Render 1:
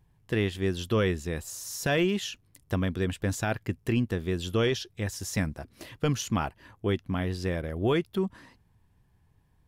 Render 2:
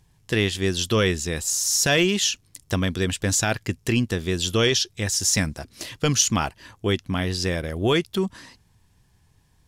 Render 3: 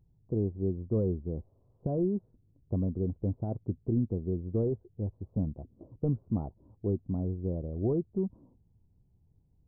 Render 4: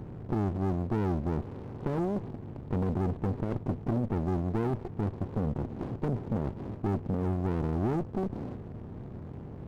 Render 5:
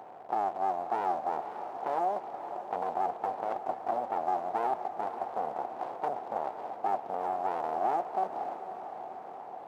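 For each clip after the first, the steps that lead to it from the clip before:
peaking EQ 6.3 kHz +13 dB 2.1 oct; trim +4 dB
Gaussian low-pass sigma 15 samples; trim -5 dB
spectral levelling over time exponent 0.4; waveshaping leveller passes 2; sliding maximum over 33 samples; trim -8 dB
resonant high-pass 740 Hz, resonance Q 4.9; echo that smears into a reverb 543 ms, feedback 60%, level -10 dB

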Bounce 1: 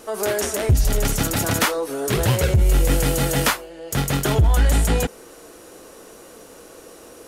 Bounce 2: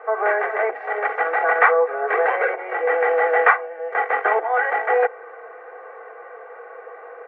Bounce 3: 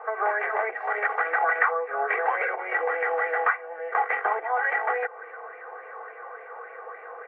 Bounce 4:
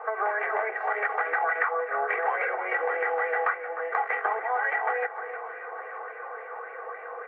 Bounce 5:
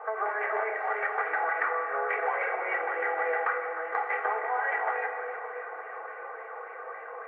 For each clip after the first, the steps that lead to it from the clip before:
Chebyshev band-pass 490–2100 Hz, order 4; comb 2.6 ms, depth 82%; trim +7 dB
compression 6:1, threshold -21 dBFS, peak gain reduction 12 dB; sweeping bell 3.5 Hz 890–2400 Hz +12 dB; trim -5.5 dB
compression 2:1, threshold -28 dBFS, peak gain reduction 6.5 dB; echo whose repeats swap between lows and highs 305 ms, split 1.9 kHz, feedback 69%, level -10.5 dB; trim +1.5 dB
reverberation RT60 2.8 s, pre-delay 5 ms, DRR 3 dB; trim -3.5 dB

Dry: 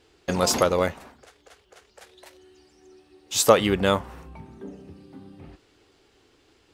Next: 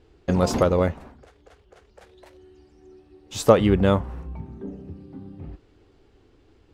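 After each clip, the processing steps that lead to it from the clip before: tilt EQ -3 dB/octave; trim -1.5 dB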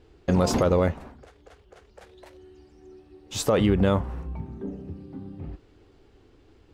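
peak limiter -13 dBFS, peak gain reduction 11.5 dB; trim +1 dB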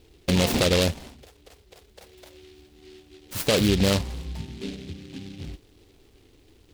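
delay time shaken by noise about 3.1 kHz, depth 0.17 ms

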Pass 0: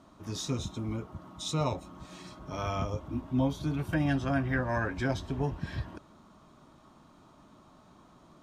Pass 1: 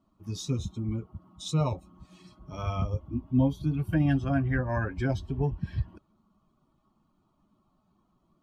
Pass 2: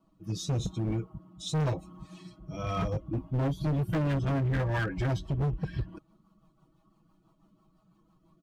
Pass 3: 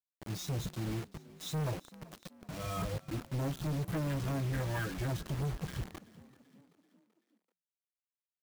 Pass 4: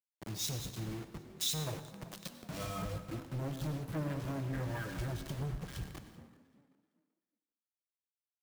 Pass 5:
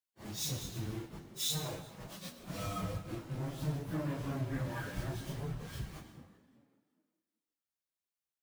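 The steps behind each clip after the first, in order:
expander on every frequency bin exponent 1.5; bass shelf 350 Hz +8 dB
comb 6.2 ms, depth 92%; rotary cabinet horn 0.9 Hz, later 6 Hz, at 2.64 s; hard clipper -28.5 dBFS, distortion -6 dB; trim +3 dB
in parallel at -2.5 dB: peak limiter -36 dBFS, peak gain reduction 10.5 dB; on the sum: bit crusher 6-bit; frequency-shifting echo 384 ms, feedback 51%, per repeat +43 Hz, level -20 dB; trim -8 dB
compression 8:1, threshold -45 dBFS, peak gain reduction 12 dB; on a send at -6.5 dB: reverberation RT60 1.5 s, pre-delay 88 ms; on the sum: three bands expanded up and down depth 100%; trim +7 dB
phase randomisation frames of 100 ms

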